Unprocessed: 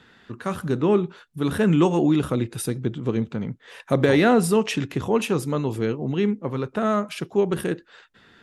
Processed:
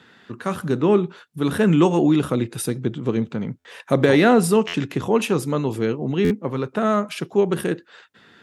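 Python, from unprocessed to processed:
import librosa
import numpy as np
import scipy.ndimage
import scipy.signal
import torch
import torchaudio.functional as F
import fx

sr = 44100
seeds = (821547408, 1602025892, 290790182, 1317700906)

y = scipy.signal.sosfilt(scipy.signal.butter(2, 110.0, 'highpass', fs=sr, output='sos'), x)
y = fx.buffer_glitch(y, sr, at_s=(3.58, 4.67, 6.24), block=512, repeats=5)
y = F.gain(torch.from_numpy(y), 2.5).numpy()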